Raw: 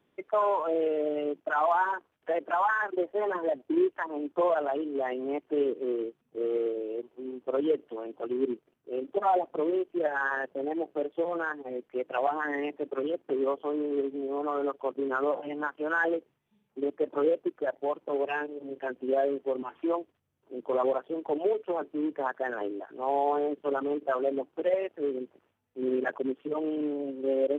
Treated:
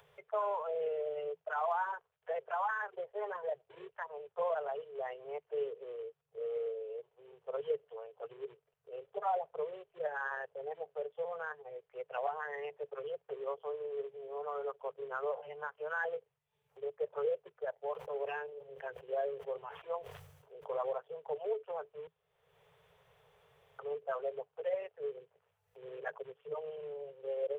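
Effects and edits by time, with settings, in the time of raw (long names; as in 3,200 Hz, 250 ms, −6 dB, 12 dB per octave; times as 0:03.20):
0:17.91–0:20.80: level that may fall only so fast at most 65 dB per second
0:22.07–0:23.79: fill with room tone
whole clip: Chebyshev band-stop filter 160–430 Hz, order 4; parametric band 430 Hz +2 dB; upward compression, threshold −43 dBFS; level −8.5 dB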